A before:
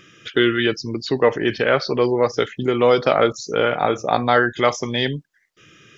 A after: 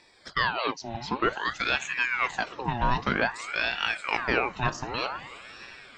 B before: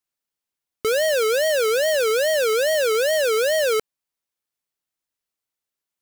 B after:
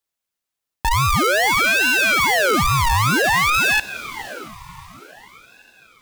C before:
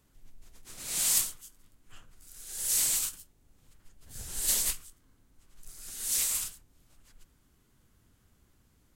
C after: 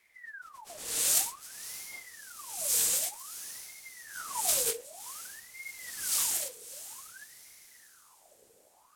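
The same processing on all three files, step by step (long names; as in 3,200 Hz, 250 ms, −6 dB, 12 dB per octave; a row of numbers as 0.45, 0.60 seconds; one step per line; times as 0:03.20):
feedback delay with all-pass diffusion 614 ms, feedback 42%, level −15 dB
ring modulator whose carrier an LFO sweeps 1,300 Hz, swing 65%, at 0.53 Hz
normalise the peak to −9 dBFS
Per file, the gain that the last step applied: −7.0, +5.5, +3.0 decibels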